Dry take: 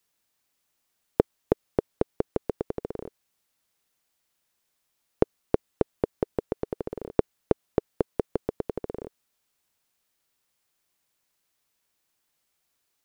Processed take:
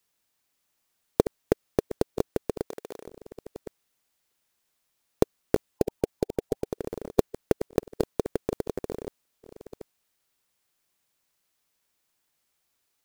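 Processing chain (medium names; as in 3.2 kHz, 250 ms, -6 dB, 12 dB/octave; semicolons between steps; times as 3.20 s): chunks repeated in reverse 617 ms, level -11 dB; 5.67–6.66 s: spectral gate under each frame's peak -20 dB strong; short-mantissa float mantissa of 2-bit; 2.67–3.07 s: high-pass 860 Hz 6 dB/octave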